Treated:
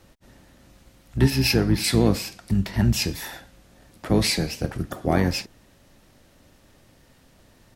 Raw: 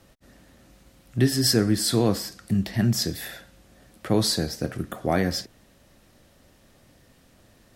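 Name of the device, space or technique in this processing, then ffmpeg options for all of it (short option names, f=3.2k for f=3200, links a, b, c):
octave pedal: -filter_complex "[0:a]asplit=2[a][b];[b]asetrate=22050,aresample=44100,atempo=2,volume=-4dB[c];[a][c]amix=inputs=2:normalize=0,asettb=1/sr,asplit=3[d][e][f];[d]atrim=end=1.304[g];[e]atrim=start=1.3:end=1.84,asetpts=PTS-STARTPTS,afade=t=in:d=0.004:c=qsin,afade=t=out:st=0.536:d=0.004:c=qsin,equalizer=f=8k:t=o:w=0.54:g=-11.5[h];[f]atrim=start=1.836[i];[g][h]acrossfade=d=0.004:c1=hsin:c2=qsin[j];[j][i]acrossfade=d=0.004:c1=qsin:c2=hsin"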